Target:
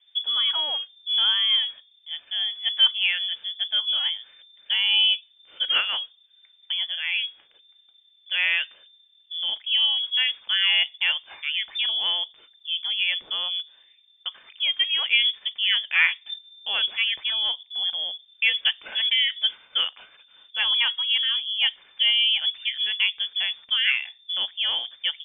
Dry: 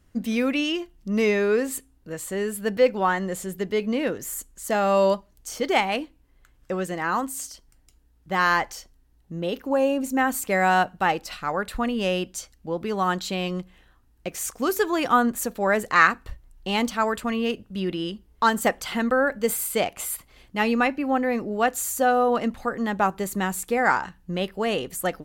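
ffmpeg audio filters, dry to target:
-af "lowpass=f=3.1k:t=q:w=0.5098,lowpass=f=3.1k:t=q:w=0.6013,lowpass=f=3.1k:t=q:w=0.9,lowpass=f=3.1k:t=q:w=2.563,afreqshift=-3600,crystalizer=i=4.5:c=0,volume=-8dB"

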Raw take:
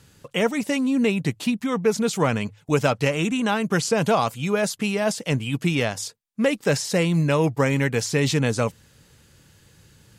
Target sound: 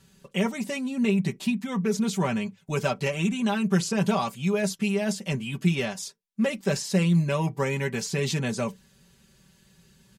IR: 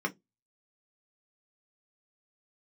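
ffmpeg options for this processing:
-filter_complex "[0:a]aecho=1:1:5.2:0.8,asplit=2[a][b];[1:a]atrim=start_sample=2205,afade=t=out:st=0.14:d=0.01,atrim=end_sample=6615[c];[b][c]afir=irnorm=-1:irlink=0,volume=-16dB[d];[a][d]amix=inputs=2:normalize=0,volume=-6dB"

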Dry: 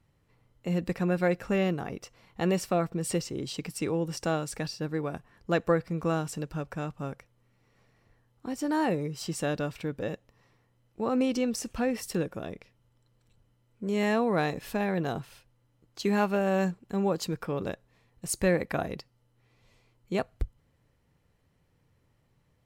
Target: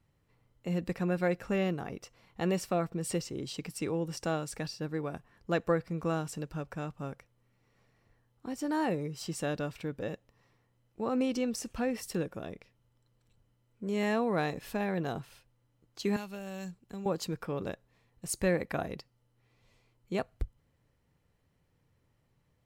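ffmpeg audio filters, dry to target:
-filter_complex "[0:a]asettb=1/sr,asplit=3[a][b][c];[a]atrim=end=16.164[d];[b]atrim=start=16.16:end=17.06,asetpts=PTS-STARTPTS,afade=t=in:d=0.004:c=qsin,afade=t=out:st=0.896:d=0.004:c=qsin,acrossover=split=130|3000[e][f][g];[f]acompressor=threshold=-42dB:ratio=3[h];[e][h][g]amix=inputs=3:normalize=0[i];[c]atrim=start=17.056[j];[d][i]acrossfade=d=0.004:c1=hsin:c2=qsin[k];[k][j]acrossfade=d=0.004:c1=qsin:c2=hsin,volume=-3.5dB"

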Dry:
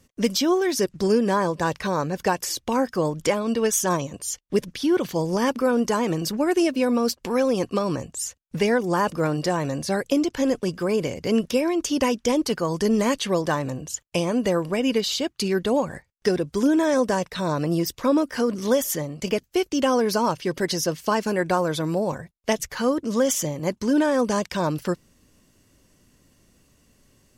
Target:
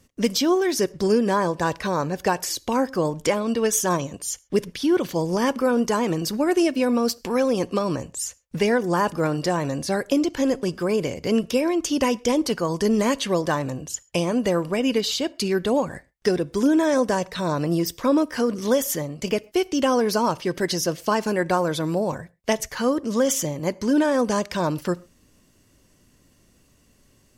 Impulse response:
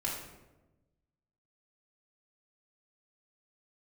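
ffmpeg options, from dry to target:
-filter_complex "[0:a]asplit=2[a][b];[1:a]atrim=start_sample=2205,atrim=end_sample=6174[c];[b][c]afir=irnorm=-1:irlink=0,volume=-22.5dB[d];[a][d]amix=inputs=2:normalize=0"

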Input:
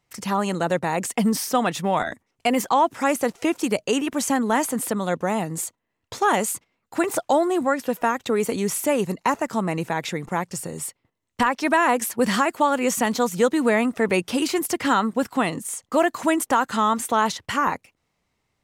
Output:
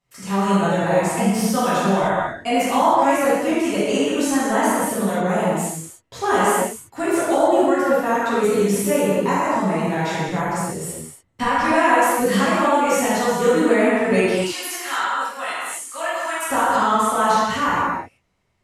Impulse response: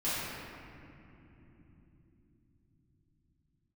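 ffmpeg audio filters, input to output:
-filter_complex "[0:a]asettb=1/sr,asplit=3[a][b][c];[a]atrim=end=14.214[d];[b]atrim=start=14.21:end=16.42,asetpts=PTS-STARTPTS,afade=t=in:d=0.004:c=qsin,afade=t=out:st=2.206:d=0.004:c=qsin,highpass=1.1k[e];[c]atrim=start=16.416[f];[d][e]acrossfade=d=0.004:c1=hsin:c2=qsin[g];[g][f]acrossfade=d=0.004:c1=qsin:c2=hsin[h];[1:a]atrim=start_sample=2205,afade=t=out:st=0.24:d=0.01,atrim=end_sample=11025,asetrate=26460,aresample=44100[i];[h][i]afir=irnorm=-1:irlink=0,volume=-7dB"

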